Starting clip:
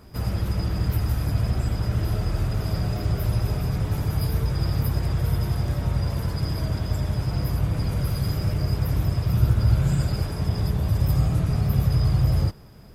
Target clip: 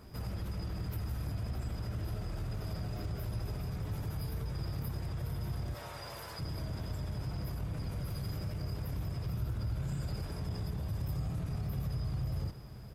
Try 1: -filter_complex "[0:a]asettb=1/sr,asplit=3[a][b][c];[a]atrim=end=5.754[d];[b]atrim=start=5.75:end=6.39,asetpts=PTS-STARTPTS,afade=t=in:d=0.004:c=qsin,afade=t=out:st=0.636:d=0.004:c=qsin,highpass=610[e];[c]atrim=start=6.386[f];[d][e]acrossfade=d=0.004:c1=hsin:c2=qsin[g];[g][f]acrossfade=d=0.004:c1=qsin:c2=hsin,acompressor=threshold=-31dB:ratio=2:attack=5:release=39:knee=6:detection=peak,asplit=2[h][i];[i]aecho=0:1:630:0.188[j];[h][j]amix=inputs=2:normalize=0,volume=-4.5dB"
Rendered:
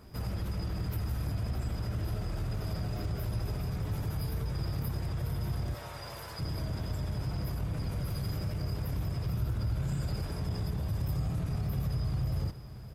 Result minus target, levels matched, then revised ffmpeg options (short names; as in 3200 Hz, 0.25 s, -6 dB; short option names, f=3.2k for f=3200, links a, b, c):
compressor: peak gain reduction -4 dB
-filter_complex "[0:a]asettb=1/sr,asplit=3[a][b][c];[a]atrim=end=5.754[d];[b]atrim=start=5.75:end=6.39,asetpts=PTS-STARTPTS,afade=t=in:d=0.004:c=qsin,afade=t=out:st=0.636:d=0.004:c=qsin,highpass=610[e];[c]atrim=start=6.386[f];[d][e]acrossfade=d=0.004:c1=hsin:c2=qsin[g];[g][f]acrossfade=d=0.004:c1=qsin:c2=hsin,acompressor=threshold=-38.5dB:ratio=2:attack=5:release=39:knee=6:detection=peak,asplit=2[h][i];[i]aecho=0:1:630:0.188[j];[h][j]amix=inputs=2:normalize=0,volume=-4.5dB"